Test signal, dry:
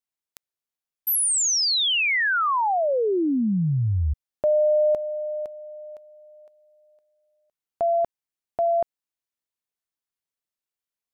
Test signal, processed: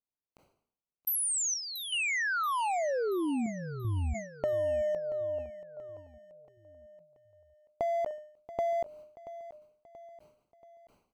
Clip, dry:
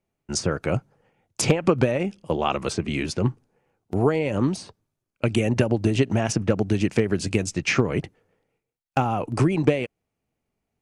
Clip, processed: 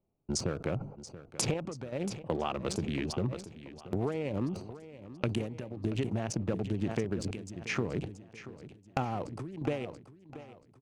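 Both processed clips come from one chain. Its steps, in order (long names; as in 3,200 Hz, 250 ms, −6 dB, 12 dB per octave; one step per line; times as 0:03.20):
adaptive Wiener filter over 25 samples
downward compressor 5 to 1, threshold −30 dBFS
square-wave tremolo 0.52 Hz, depth 65%, duty 80%
on a send: repeating echo 681 ms, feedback 49%, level −15 dB
on the sum: level that may fall only so fast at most 100 dB per second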